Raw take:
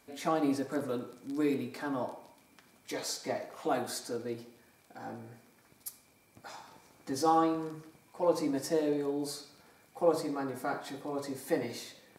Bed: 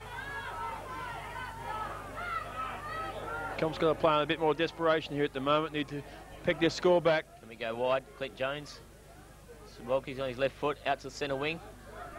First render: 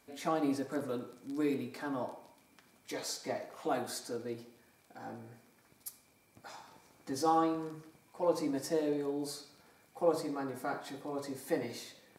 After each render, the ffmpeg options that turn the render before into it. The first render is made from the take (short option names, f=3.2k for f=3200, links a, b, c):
-af "volume=-2.5dB"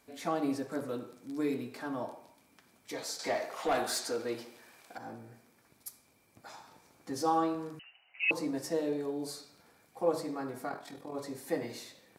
-filter_complex "[0:a]asettb=1/sr,asplit=3[a][b][c];[a]atrim=end=3.194[d];[b]atrim=start=3.19:end=4.98,asetpts=PTS-STARTPTS,afade=t=in:d=0.004:c=qsin,afade=t=out:st=1.786:d=0.004:c=qsin,asplit=2[e][f];[f]highpass=f=720:p=1,volume=16dB,asoftclip=type=tanh:threshold=-21dB[g];[e][g]amix=inputs=2:normalize=0,lowpass=f=7.8k:p=1,volume=-6dB[h];[c]atrim=start=4.976[i];[d][h]acrossfade=d=0.004:c1=hsin:c2=qsin[j];[j][i]acrossfade=d=0.004:c1=qsin:c2=hsin,asettb=1/sr,asplit=3[k][l][m];[k]atrim=end=7.794[n];[l]atrim=start=7.79:end=8.31,asetpts=PTS-STARTPTS,afade=t=in:d=0.004:c=qsin,afade=t=out:st=0.516:d=0.004:c=qsin,lowpass=f=2.6k:t=q:w=0.5098,lowpass=f=2.6k:t=q:w=0.6013,lowpass=f=2.6k:t=q:w=0.9,lowpass=f=2.6k:t=q:w=2.563,afreqshift=-3100[o];[m]atrim=start=8.306[p];[n][o]acrossfade=d=0.004:c1=hsin:c2=qsin[q];[q][p]acrossfade=d=0.004:c1=qsin:c2=hsin,asplit=3[r][s][t];[r]afade=t=out:st=10.67:d=0.02[u];[s]tremolo=f=41:d=0.621,afade=t=in:st=10.67:d=0.02,afade=t=out:st=11.13:d=0.02[v];[t]afade=t=in:st=11.13:d=0.02[w];[u][v][w]amix=inputs=3:normalize=0"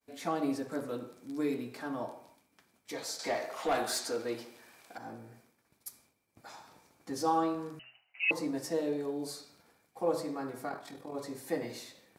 -af "bandreject=f=127.3:t=h:w=4,bandreject=f=254.6:t=h:w=4,bandreject=f=381.9:t=h:w=4,bandreject=f=509.2:t=h:w=4,bandreject=f=636.5:t=h:w=4,bandreject=f=763.8:t=h:w=4,bandreject=f=891.1:t=h:w=4,bandreject=f=1.0184k:t=h:w=4,bandreject=f=1.1457k:t=h:w=4,bandreject=f=1.273k:t=h:w=4,bandreject=f=1.4003k:t=h:w=4,bandreject=f=1.5276k:t=h:w=4,bandreject=f=1.6549k:t=h:w=4,bandreject=f=1.7822k:t=h:w=4,bandreject=f=1.9095k:t=h:w=4,bandreject=f=2.0368k:t=h:w=4,agate=range=-33dB:threshold=-59dB:ratio=3:detection=peak"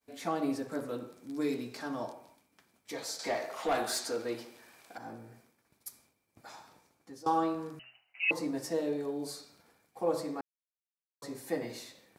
-filter_complex "[0:a]asettb=1/sr,asplit=3[a][b][c];[a]atrim=end=1.414[d];[b]atrim=start=1.41:end=2.13,asetpts=PTS-STARTPTS,afade=t=in:d=0.004:c=qsin,afade=t=out:st=0.716:d=0.004:c=qsin,equalizer=f=5.5k:w=1.2:g=8[e];[c]atrim=start=2.126[f];[d][e]acrossfade=d=0.004:c1=hsin:c2=qsin[g];[g][f]acrossfade=d=0.004:c1=qsin:c2=hsin,asplit=4[h][i][j][k];[h]atrim=end=7.26,asetpts=PTS-STARTPTS,afade=t=out:st=6.59:d=0.67:silence=0.125893[l];[i]atrim=start=7.26:end=10.41,asetpts=PTS-STARTPTS,afade=t=in:d=0.004:c=hsin:silence=0.125893,afade=t=out:st=3.146:d=0.004:c=hsin[m];[j]atrim=start=10.41:end=11.22,asetpts=PTS-STARTPTS,volume=0[n];[k]atrim=start=11.22,asetpts=PTS-STARTPTS,afade=t=in:d=0.004:c=hsin[o];[l][m][n][o]concat=n=4:v=0:a=1"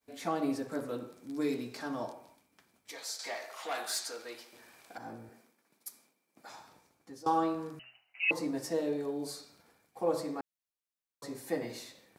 -filter_complex "[0:a]asettb=1/sr,asplit=3[a][b][c];[a]atrim=end=2.914[d];[b]atrim=start=2.91:end=4.53,asetpts=PTS-STARTPTS,afade=t=in:d=0.004:c=qsin,afade=t=out:st=1.616:d=0.004:c=qsin,highpass=f=1.4k:p=1[e];[c]atrim=start=4.526[f];[d][e]acrossfade=d=0.004:c1=hsin:c2=qsin[g];[g][f]acrossfade=d=0.004:c1=qsin:c2=hsin,asettb=1/sr,asplit=3[h][i][j];[h]atrim=end=5.294[k];[i]atrim=start=5.29:end=6.5,asetpts=PTS-STARTPTS,afade=t=in:d=0.004:c=qsin,afade=t=out:st=1.206:d=0.004:c=qsin,highpass=f=180:w=0.5412,highpass=f=180:w=1.3066[l];[j]atrim=start=6.496[m];[k][l]acrossfade=d=0.004:c1=hsin:c2=qsin[n];[n][m]acrossfade=d=0.004:c1=qsin:c2=hsin"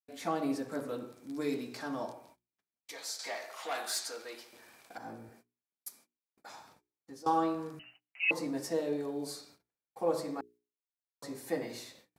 -af "agate=range=-32dB:threshold=-59dB:ratio=16:detection=peak,bandreject=f=60:t=h:w=6,bandreject=f=120:t=h:w=6,bandreject=f=180:t=h:w=6,bandreject=f=240:t=h:w=6,bandreject=f=300:t=h:w=6,bandreject=f=360:t=h:w=6,bandreject=f=420:t=h:w=6"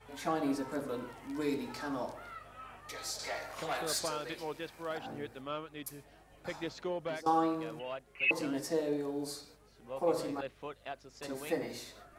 -filter_complex "[1:a]volume=-12dB[a];[0:a][a]amix=inputs=2:normalize=0"